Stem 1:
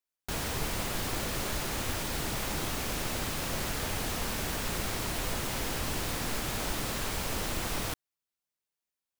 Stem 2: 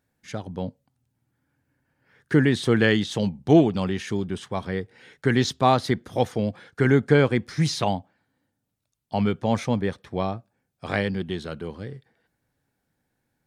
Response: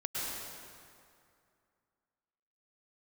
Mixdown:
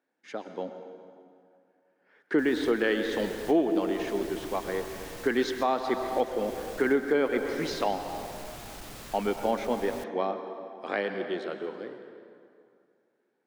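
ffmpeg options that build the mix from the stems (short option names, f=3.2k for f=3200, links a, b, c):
-filter_complex "[0:a]asoftclip=type=tanh:threshold=-26.5dB,adelay=2100,volume=-9dB[a];[1:a]highpass=f=280:w=0.5412,highpass=f=280:w=1.3066,aemphasis=mode=reproduction:type=75fm,volume=-3.5dB,asplit=3[b][c][d];[c]volume=-9.5dB[e];[d]apad=whole_len=498009[f];[a][f]sidechaincompress=threshold=-25dB:ratio=8:attack=24:release=1000[g];[2:a]atrim=start_sample=2205[h];[e][h]afir=irnorm=-1:irlink=0[i];[g][b][i]amix=inputs=3:normalize=0,alimiter=limit=-14.5dB:level=0:latency=1:release=307"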